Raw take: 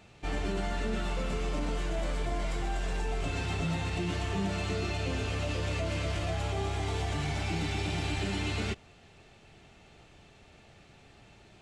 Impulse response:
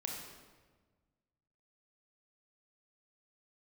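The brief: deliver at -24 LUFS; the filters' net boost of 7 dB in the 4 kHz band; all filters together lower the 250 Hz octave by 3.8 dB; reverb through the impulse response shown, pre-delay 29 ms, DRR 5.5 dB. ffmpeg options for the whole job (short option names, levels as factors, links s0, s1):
-filter_complex "[0:a]equalizer=f=250:t=o:g=-6,equalizer=f=4000:t=o:g=9,asplit=2[s0][s1];[1:a]atrim=start_sample=2205,adelay=29[s2];[s1][s2]afir=irnorm=-1:irlink=0,volume=0.501[s3];[s0][s3]amix=inputs=2:normalize=0,volume=2.11"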